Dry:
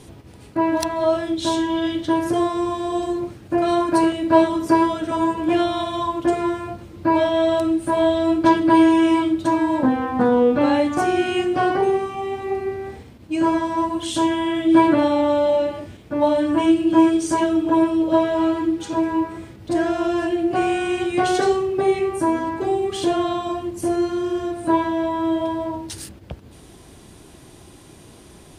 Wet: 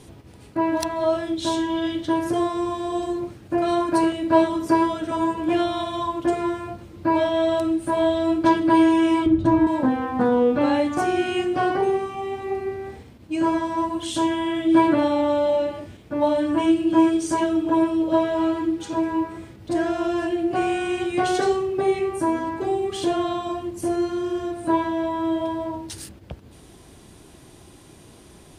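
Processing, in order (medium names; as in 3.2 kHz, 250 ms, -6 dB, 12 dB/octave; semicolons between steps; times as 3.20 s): 9.26–9.67 s: RIAA curve playback; trim -2.5 dB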